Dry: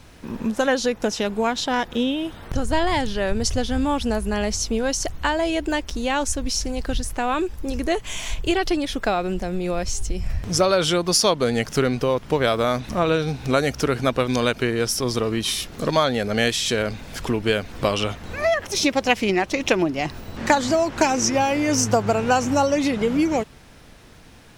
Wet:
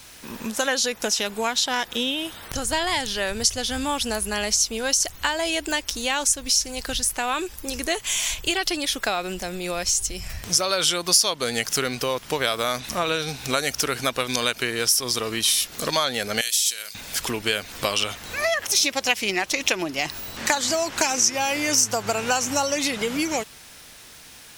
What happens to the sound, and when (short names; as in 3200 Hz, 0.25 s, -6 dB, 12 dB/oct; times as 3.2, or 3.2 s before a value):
16.41–16.95 pre-emphasis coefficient 0.97
whole clip: tilt +4 dB/oct; compressor 2:1, threshold -21 dBFS; low shelf 98 Hz +10 dB